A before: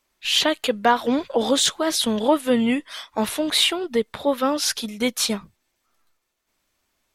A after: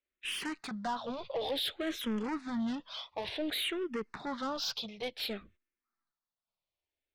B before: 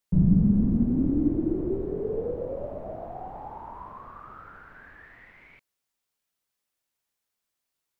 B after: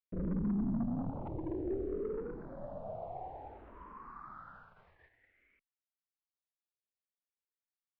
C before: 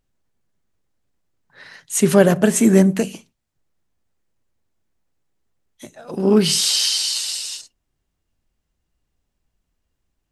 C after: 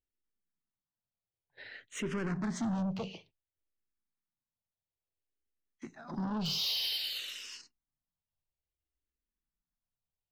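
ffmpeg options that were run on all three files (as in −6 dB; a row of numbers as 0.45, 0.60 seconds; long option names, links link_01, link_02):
-filter_complex "[0:a]lowpass=frequency=4800:width=0.5412,lowpass=frequency=4800:width=1.3066,agate=range=-14dB:threshold=-48dB:ratio=16:detection=peak,alimiter=limit=-11.5dB:level=0:latency=1:release=283,asoftclip=type=tanh:threshold=-24.5dB,asplit=2[link_01][link_02];[link_02]afreqshift=-0.56[link_03];[link_01][link_03]amix=inputs=2:normalize=1,volume=-4dB"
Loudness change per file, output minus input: −15.0, −13.0, −18.0 LU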